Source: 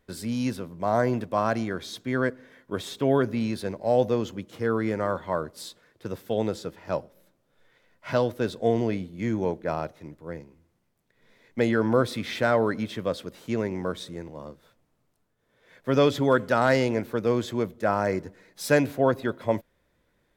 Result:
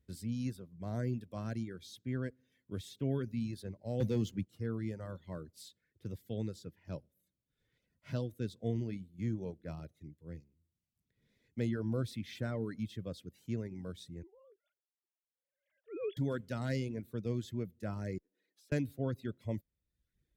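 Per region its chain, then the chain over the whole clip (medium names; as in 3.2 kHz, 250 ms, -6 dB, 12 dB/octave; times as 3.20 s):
4.00–4.46 s: high-pass 87 Hz 24 dB/octave + waveshaping leveller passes 2
14.23–16.17 s: formants replaced by sine waves + low-pass 2.8 kHz + transient shaper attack -11 dB, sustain +1 dB
18.18–18.72 s: high-pass 290 Hz 24 dB/octave + treble shelf 3.4 kHz -9.5 dB + compression 16:1, threshold -50 dBFS
whole clip: high-pass 49 Hz; reverb removal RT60 0.78 s; amplifier tone stack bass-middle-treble 10-0-1; trim +9 dB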